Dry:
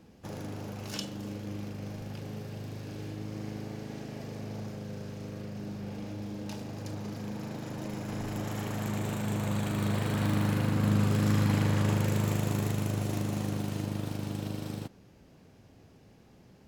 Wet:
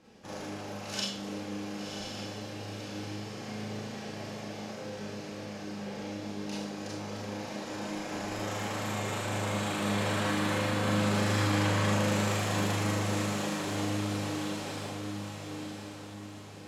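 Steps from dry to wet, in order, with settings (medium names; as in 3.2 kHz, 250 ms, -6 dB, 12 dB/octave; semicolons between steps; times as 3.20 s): low-pass 8.8 kHz 12 dB/octave; bass shelf 350 Hz -10.5 dB; echo that smears into a reverb 1044 ms, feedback 47%, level -6 dB; Schroeder reverb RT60 0.42 s, combs from 29 ms, DRR -4.5 dB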